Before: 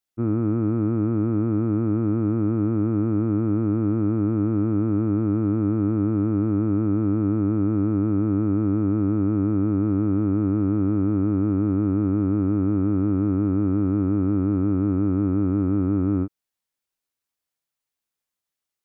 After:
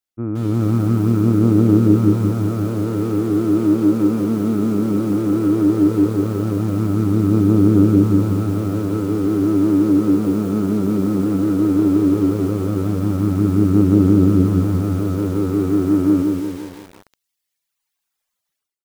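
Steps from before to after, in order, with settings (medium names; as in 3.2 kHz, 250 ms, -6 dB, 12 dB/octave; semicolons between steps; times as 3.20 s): level rider gain up to 13 dB; frequency-shifting echo 188 ms, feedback 40%, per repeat +75 Hz, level -15.5 dB; reverb removal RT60 1.6 s; 7.84–9.24 s: de-hum 95.35 Hz, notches 6; bit-crushed delay 173 ms, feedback 55%, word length 6-bit, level -3.5 dB; trim -2 dB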